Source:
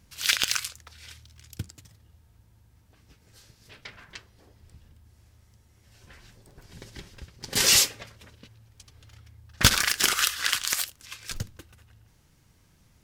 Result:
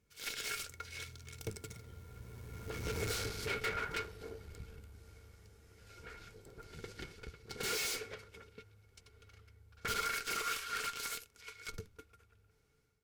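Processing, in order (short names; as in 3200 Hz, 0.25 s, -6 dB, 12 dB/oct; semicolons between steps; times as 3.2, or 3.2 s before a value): Doppler pass-by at 3.03, 27 m/s, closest 2.5 m; AGC gain up to 13.5 dB; tube stage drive 52 dB, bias 0.5; small resonant body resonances 440/1400/2200 Hz, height 17 dB, ringing for 70 ms; gain +15 dB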